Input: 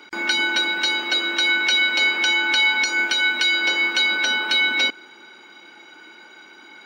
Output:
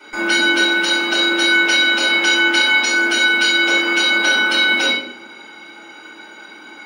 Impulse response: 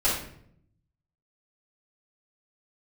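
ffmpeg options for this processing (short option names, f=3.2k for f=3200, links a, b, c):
-filter_complex "[0:a]equalizer=f=10k:t=o:w=0.26:g=11[a];[1:a]atrim=start_sample=2205[b];[a][b]afir=irnorm=-1:irlink=0,volume=-5dB"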